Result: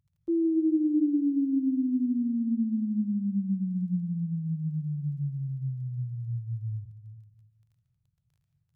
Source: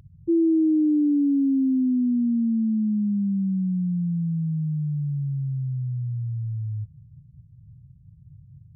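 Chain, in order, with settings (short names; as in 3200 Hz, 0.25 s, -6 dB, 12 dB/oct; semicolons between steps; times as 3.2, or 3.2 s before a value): gate -39 dBFS, range -20 dB; crackle 22/s -54 dBFS; on a send: reverb RT60 1.4 s, pre-delay 0.1 s, DRR 7 dB; on the sum: gain -6 dB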